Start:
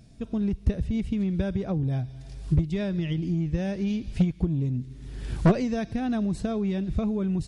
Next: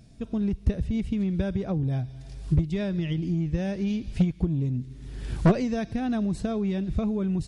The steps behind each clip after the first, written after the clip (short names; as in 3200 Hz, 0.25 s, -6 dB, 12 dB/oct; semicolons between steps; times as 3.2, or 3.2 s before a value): nothing audible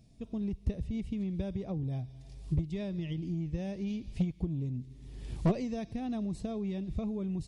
bell 1500 Hz -11.5 dB 0.41 oct; gain -8 dB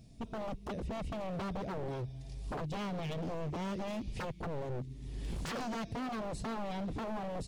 wavefolder -37 dBFS; gain +4 dB